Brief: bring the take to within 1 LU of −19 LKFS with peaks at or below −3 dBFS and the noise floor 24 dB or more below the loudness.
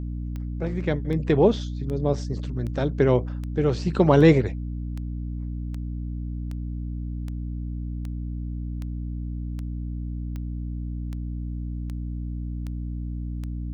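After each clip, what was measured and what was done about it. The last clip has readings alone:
number of clicks 18; mains hum 60 Hz; hum harmonics up to 300 Hz; level of the hum −28 dBFS; integrated loudness −27.0 LKFS; sample peak −4.0 dBFS; target loudness −19.0 LKFS
→ click removal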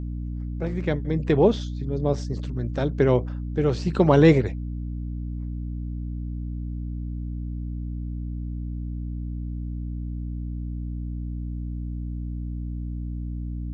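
number of clicks 0; mains hum 60 Hz; hum harmonics up to 300 Hz; level of the hum −28 dBFS
→ mains-hum notches 60/120/180/240/300 Hz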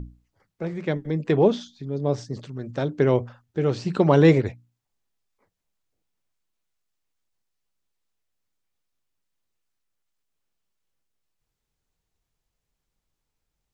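mains hum none found; integrated loudness −23.0 LKFS; sample peak −4.0 dBFS; target loudness −19.0 LKFS
→ level +4 dB
brickwall limiter −3 dBFS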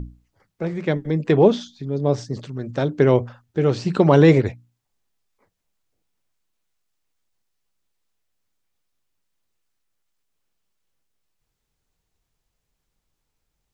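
integrated loudness −19.5 LKFS; sample peak −3.0 dBFS; background noise floor −78 dBFS

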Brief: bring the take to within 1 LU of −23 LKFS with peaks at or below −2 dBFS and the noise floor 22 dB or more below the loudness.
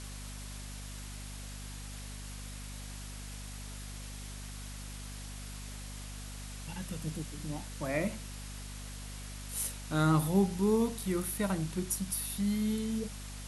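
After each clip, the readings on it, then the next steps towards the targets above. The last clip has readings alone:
mains hum 50 Hz; hum harmonics up to 250 Hz; level of the hum −42 dBFS; background noise floor −44 dBFS; target noise floor −58 dBFS; integrated loudness −36.0 LKFS; sample peak −14.5 dBFS; target loudness −23.0 LKFS
→ mains-hum notches 50/100/150/200/250 Hz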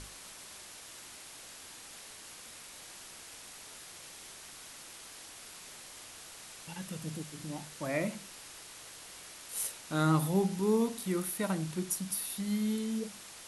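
mains hum none found; background noise floor −50 dBFS; target noise floor −59 dBFS
→ broadband denoise 9 dB, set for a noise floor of −50 dBFS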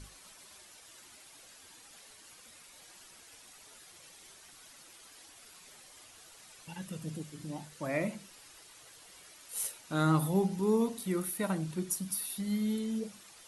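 background noise floor −56 dBFS; integrated loudness −33.5 LKFS; sample peak −14.5 dBFS; target loudness −23.0 LKFS
→ level +10.5 dB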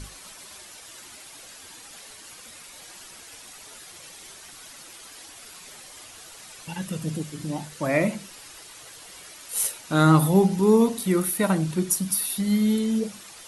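integrated loudness −23.0 LKFS; sample peak −4.0 dBFS; background noise floor −45 dBFS

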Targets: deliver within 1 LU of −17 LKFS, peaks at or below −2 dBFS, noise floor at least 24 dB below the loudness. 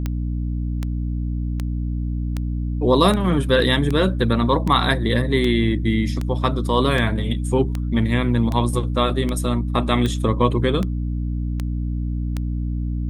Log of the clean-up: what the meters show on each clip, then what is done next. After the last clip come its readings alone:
number of clicks 17; mains hum 60 Hz; hum harmonics up to 300 Hz; level of the hum −21 dBFS; integrated loudness −21.0 LKFS; sample peak −1.5 dBFS; target loudness −17.0 LKFS
→ click removal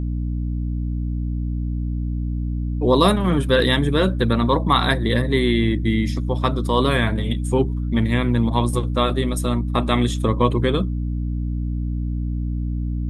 number of clicks 0; mains hum 60 Hz; hum harmonics up to 300 Hz; level of the hum −21 dBFS
→ hum removal 60 Hz, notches 5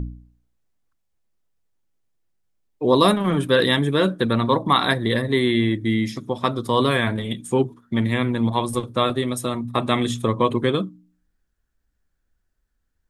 mains hum none found; integrated loudness −21.0 LKFS; sample peak −3.5 dBFS; target loudness −17.0 LKFS
→ level +4 dB
brickwall limiter −2 dBFS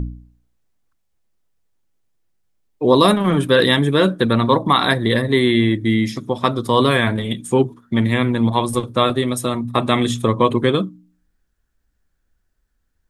integrated loudness −17.5 LKFS; sample peak −2.0 dBFS; background noise floor −69 dBFS

